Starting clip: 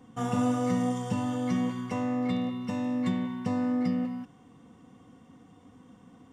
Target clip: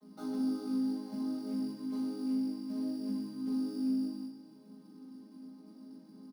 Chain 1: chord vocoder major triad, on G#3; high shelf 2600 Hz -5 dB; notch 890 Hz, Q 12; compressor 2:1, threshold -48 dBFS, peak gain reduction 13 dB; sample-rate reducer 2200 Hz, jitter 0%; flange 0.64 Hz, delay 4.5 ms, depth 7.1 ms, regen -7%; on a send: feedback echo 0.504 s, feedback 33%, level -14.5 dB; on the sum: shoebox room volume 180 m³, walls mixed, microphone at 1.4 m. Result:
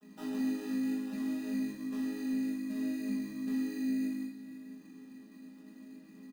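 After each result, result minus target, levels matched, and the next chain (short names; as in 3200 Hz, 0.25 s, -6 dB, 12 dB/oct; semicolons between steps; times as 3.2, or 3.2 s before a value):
echo 0.18 s late; sample-rate reducer: distortion +7 dB
chord vocoder major triad, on G#3; high shelf 2600 Hz -5 dB; notch 890 Hz, Q 12; compressor 2:1, threshold -48 dBFS, peak gain reduction 13 dB; sample-rate reducer 2200 Hz, jitter 0%; flange 0.64 Hz, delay 4.5 ms, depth 7.1 ms, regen -7%; on a send: feedback echo 0.324 s, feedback 33%, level -14.5 dB; on the sum: shoebox room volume 180 m³, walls mixed, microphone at 1.4 m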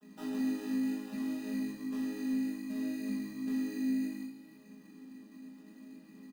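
sample-rate reducer: distortion +7 dB
chord vocoder major triad, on G#3; high shelf 2600 Hz -5 dB; notch 890 Hz, Q 12; compressor 2:1, threshold -48 dBFS, peak gain reduction 13 dB; sample-rate reducer 5000 Hz, jitter 0%; flange 0.64 Hz, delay 4.5 ms, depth 7.1 ms, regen -7%; on a send: feedback echo 0.324 s, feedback 33%, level -14.5 dB; on the sum: shoebox room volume 180 m³, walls mixed, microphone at 1.4 m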